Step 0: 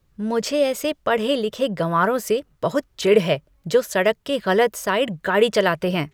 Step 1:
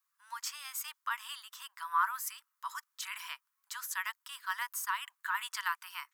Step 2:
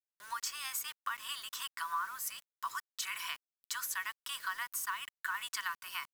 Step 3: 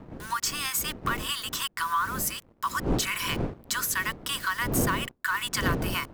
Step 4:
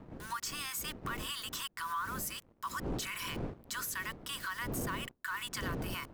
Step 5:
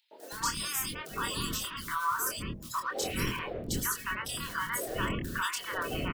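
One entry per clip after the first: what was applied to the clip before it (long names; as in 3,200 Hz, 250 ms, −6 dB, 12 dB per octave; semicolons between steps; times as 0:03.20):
Butterworth high-pass 1,000 Hz 72 dB per octave; parametric band 2,900 Hz −15 dB 2.6 octaves
comb filter 2.7 ms, depth 35%; downward compressor 5 to 1, threshold −43 dBFS, peak gain reduction 17 dB; bit reduction 10 bits; level +7.5 dB
wind on the microphone 320 Hz −43 dBFS; leveller curve on the samples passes 2; level +2.5 dB
brickwall limiter −24 dBFS, peak gain reduction 8 dB; level −6 dB
spectral magnitudes quantised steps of 30 dB; double-tracking delay 25 ms −4.5 dB; three-band delay without the direct sound highs, mids, lows 110/320 ms, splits 380/2,700 Hz; level +5.5 dB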